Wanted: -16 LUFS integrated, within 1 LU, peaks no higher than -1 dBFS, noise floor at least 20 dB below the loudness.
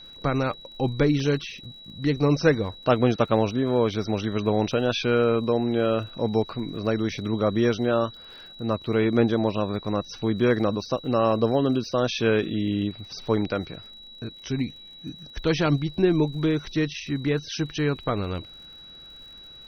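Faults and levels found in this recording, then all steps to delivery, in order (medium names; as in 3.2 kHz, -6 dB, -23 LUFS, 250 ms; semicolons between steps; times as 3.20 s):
tick rate 58 per s; steady tone 3.9 kHz; tone level -43 dBFS; loudness -24.5 LUFS; peak level -6.0 dBFS; loudness target -16.0 LUFS
-> de-click; band-stop 3.9 kHz, Q 30; trim +8.5 dB; peak limiter -1 dBFS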